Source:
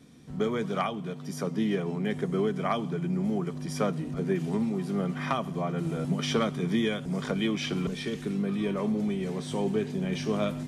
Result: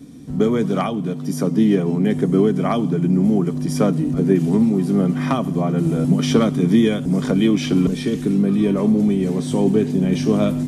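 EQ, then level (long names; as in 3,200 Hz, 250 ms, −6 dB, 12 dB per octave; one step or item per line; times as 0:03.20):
tilt shelving filter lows +5.5 dB, about 770 Hz
parametric band 280 Hz +10.5 dB 0.23 octaves
high-shelf EQ 5,300 Hz +12 dB
+6.5 dB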